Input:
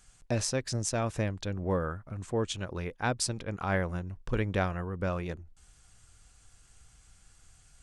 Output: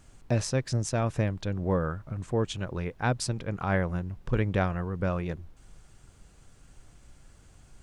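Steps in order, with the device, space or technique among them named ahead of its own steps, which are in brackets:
car interior (parametric band 140 Hz +6 dB 0.6 octaves; high-shelf EQ 4,000 Hz −6.5 dB; brown noise bed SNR 23 dB)
level +2 dB

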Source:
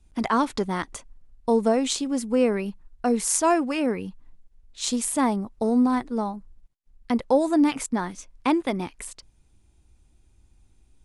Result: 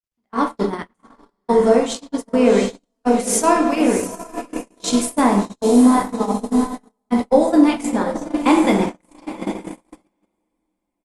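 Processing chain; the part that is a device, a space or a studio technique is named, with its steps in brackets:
low-shelf EQ 86 Hz +3 dB
feedback delay with all-pass diffusion 753 ms, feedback 48%, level −8 dB
speakerphone in a meeting room (convolution reverb RT60 0.90 s, pre-delay 11 ms, DRR 1 dB; far-end echo of a speakerphone 210 ms, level −19 dB; automatic gain control gain up to 13 dB; noise gate −16 dBFS, range −48 dB; level −1 dB; Opus 32 kbit/s 48,000 Hz)

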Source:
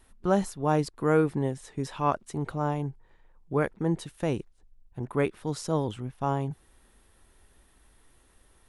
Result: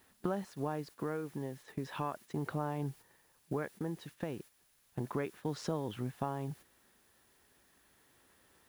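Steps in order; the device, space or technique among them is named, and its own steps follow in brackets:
medium wave at night (band-pass filter 120–4,400 Hz; downward compressor 10 to 1, threshold −37 dBFS, peak gain reduction 19.5 dB; amplitude tremolo 0.35 Hz, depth 34%; steady tone 10,000 Hz −73 dBFS; white noise bed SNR 23 dB)
parametric band 1,700 Hz +4.5 dB 0.21 octaves
noise gate −56 dBFS, range −8 dB
level +5 dB

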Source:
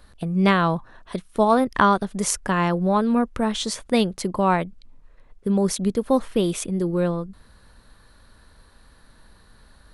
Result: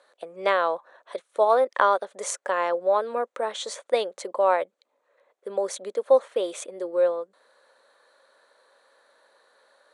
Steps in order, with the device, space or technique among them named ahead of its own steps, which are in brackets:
phone speaker on a table (loudspeaker in its box 440–8,500 Hz, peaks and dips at 550 Hz +10 dB, 2,800 Hz −5 dB, 5,100 Hz −9 dB)
level −3 dB

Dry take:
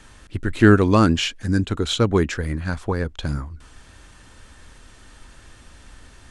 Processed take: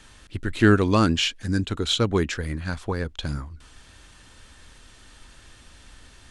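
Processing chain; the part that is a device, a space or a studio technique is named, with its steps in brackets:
presence and air boost (parametric band 3,600 Hz +5 dB 1.4 octaves; high-shelf EQ 9,100 Hz +4.5 dB)
level −4 dB

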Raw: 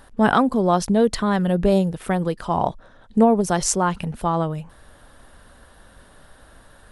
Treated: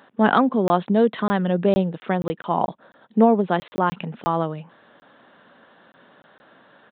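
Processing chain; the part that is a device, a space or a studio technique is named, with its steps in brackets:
call with lost packets (high-pass filter 170 Hz 24 dB per octave; downsampling to 8,000 Hz; dropped packets of 20 ms random)

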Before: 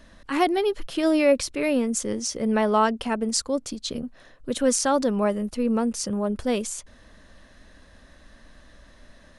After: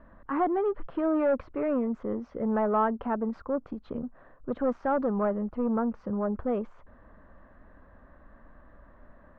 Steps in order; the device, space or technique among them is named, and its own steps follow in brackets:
overdriven synthesiser ladder filter (soft clipping −19 dBFS, distortion −12 dB; transistor ladder low-pass 1,500 Hz, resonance 35%)
level +5 dB

